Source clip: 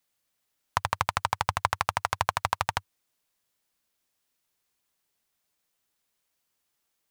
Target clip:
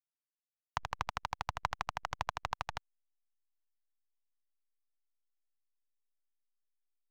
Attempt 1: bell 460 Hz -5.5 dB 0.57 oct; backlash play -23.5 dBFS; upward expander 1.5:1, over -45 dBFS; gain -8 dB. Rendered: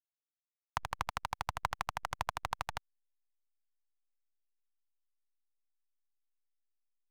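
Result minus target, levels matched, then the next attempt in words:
8000 Hz band +3.0 dB
steep low-pass 6900 Hz 36 dB/oct; bell 460 Hz -5.5 dB 0.57 oct; backlash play -23.5 dBFS; upward expander 1.5:1, over -45 dBFS; gain -8 dB

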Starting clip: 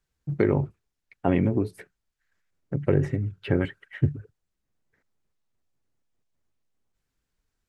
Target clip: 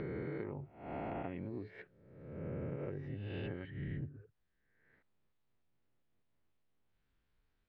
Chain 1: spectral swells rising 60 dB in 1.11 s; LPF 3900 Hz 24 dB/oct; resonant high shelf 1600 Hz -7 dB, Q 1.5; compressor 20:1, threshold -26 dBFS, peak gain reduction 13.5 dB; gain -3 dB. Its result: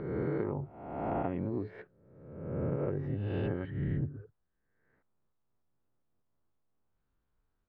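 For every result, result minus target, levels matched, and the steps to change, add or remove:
compressor: peak gain reduction -8 dB; 4000 Hz band -8.0 dB
change: compressor 20:1, threshold -35 dBFS, peak gain reduction 22 dB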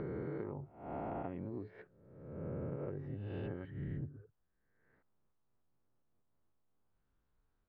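4000 Hz band -8.5 dB
remove: resonant high shelf 1600 Hz -7 dB, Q 1.5

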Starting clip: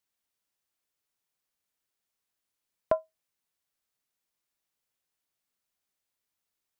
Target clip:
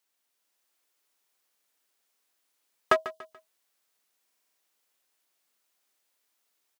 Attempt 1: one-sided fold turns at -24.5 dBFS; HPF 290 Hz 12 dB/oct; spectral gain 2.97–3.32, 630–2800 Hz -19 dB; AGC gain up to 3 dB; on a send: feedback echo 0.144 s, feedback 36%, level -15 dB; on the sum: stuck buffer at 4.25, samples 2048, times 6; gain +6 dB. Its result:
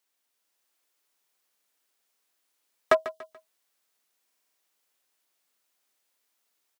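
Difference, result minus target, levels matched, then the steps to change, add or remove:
one-sided fold: distortion -8 dB
change: one-sided fold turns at -30.5 dBFS

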